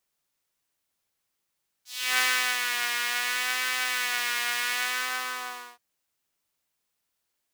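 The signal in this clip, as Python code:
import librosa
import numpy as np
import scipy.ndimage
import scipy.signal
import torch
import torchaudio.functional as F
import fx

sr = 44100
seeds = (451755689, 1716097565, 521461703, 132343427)

y = fx.sub_patch_vibrato(sr, seeds[0], note=59, wave='saw', wave2='saw', interval_st=7, detune_cents=9, level2_db=-9, sub_db=-24, noise_db=-17.5, kind='highpass', cutoff_hz=910.0, q=1.6, env_oct=2.5, env_decay_s=0.28, env_sustain_pct=40, attack_ms=340.0, decay_s=0.39, sustain_db=-5.0, release_s=0.97, note_s=2.96, lfo_hz=0.68, vibrato_cents=48)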